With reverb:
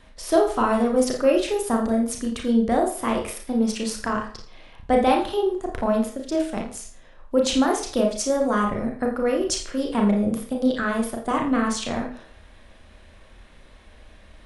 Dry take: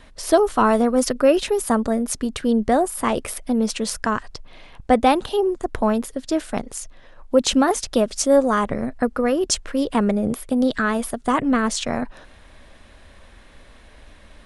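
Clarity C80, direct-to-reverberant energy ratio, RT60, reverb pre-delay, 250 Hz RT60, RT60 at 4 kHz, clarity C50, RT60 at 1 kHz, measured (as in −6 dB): 10.5 dB, 0.5 dB, 0.45 s, 32 ms, 0.50 s, 0.40 s, 7.0 dB, 0.45 s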